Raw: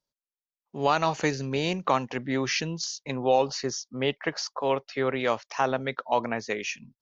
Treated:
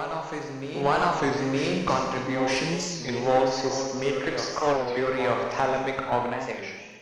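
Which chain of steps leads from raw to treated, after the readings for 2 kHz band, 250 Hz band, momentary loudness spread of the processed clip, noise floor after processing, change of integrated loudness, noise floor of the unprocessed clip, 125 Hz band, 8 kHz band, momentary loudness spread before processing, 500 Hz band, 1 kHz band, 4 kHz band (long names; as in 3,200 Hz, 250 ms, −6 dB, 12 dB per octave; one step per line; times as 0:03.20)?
+1.5 dB, +2.5 dB, 9 LU, −37 dBFS, +1.5 dB, below −85 dBFS, +1.5 dB, can't be measured, 7 LU, +2.5 dB, +2.0 dB, −0.5 dB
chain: fade-out on the ending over 1.03 s
in parallel at −1.5 dB: downward compressor, threshold −34 dBFS, peak gain reduction 16.5 dB
on the sum: low-shelf EQ 390 Hz −6.5 dB
asymmetric clip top −24.5 dBFS
four-comb reverb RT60 1.5 s, combs from 33 ms, DRR 1.5 dB
downsampling to 22,050 Hz
high-shelf EQ 2,400 Hz −9 dB
on a send: backwards echo 915 ms −8 dB
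on the sum: surface crackle 60 per second −54 dBFS
wow of a warped record 33 1/3 rpm, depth 160 cents
level +2.5 dB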